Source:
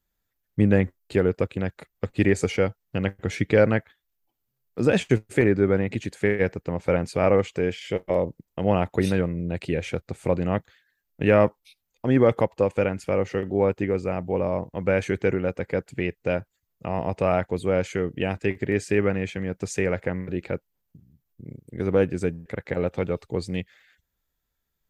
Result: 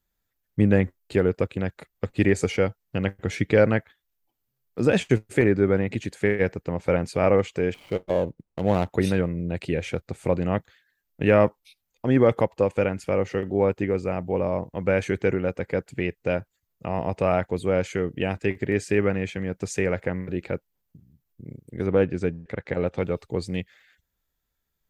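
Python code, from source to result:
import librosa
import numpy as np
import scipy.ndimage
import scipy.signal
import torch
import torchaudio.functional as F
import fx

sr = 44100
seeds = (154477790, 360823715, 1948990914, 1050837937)

y = fx.median_filter(x, sr, points=25, at=(7.74, 8.88))
y = fx.lowpass(y, sr, hz=fx.line((21.86, 4100.0), (22.96, 7900.0)), slope=12, at=(21.86, 22.96), fade=0.02)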